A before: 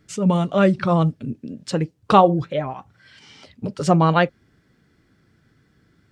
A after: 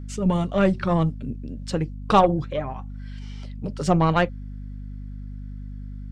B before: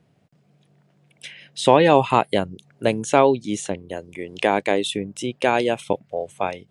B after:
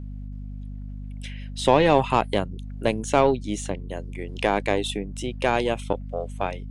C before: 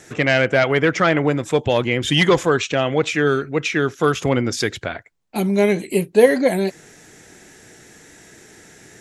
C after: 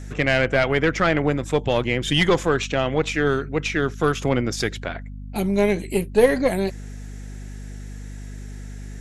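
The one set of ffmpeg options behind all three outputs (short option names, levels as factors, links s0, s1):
-af "aeval=exprs='0.891*(cos(1*acos(clip(val(0)/0.891,-1,1)))-cos(1*PI/2))+0.0447*(cos(6*acos(clip(val(0)/0.891,-1,1)))-cos(6*PI/2))':c=same,aeval=exprs='val(0)+0.0316*(sin(2*PI*50*n/s)+sin(2*PI*2*50*n/s)/2+sin(2*PI*3*50*n/s)/3+sin(2*PI*4*50*n/s)/4+sin(2*PI*5*50*n/s)/5)':c=same,volume=0.668"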